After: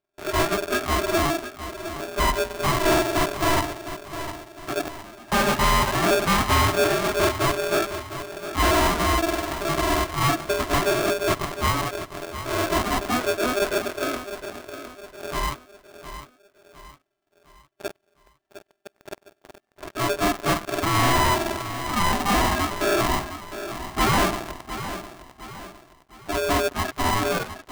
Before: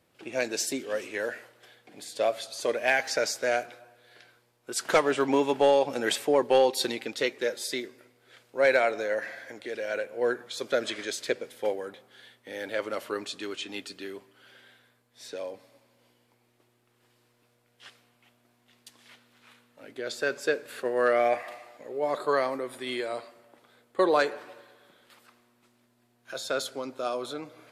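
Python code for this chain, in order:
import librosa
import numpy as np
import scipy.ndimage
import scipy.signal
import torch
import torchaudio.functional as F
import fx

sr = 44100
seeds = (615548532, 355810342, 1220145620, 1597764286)

p1 = fx.octave_mirror(x, sr, pivot_hz=550.0)
p2 = fx.leveller(p1, sr, passes=5)
p3 = fx.gate_flip(p2, sr, shuts_db=-17.0, range_db=-25, at=(4.82, 5.32))
p4 = p3 + fx.echo_feedback(p3, sr, ms=708, feedback_pct=42, wet_db=-11.5, dry=0)
p5 = p4 * np.sign(np.sin(2.0 * np.pi * 500.0 * np.arange(len(p4)) / sr))
y = F.gain(torch.from_numpy(p5), -6.0).numpy()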